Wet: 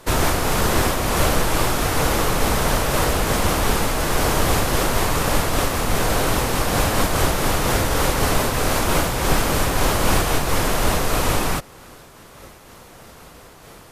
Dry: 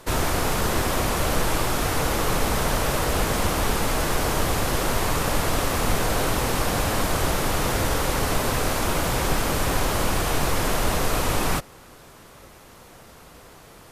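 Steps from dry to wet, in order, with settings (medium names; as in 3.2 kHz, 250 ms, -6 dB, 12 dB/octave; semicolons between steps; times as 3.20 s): random flutter of the level, depth 55%; trim +6.5 dB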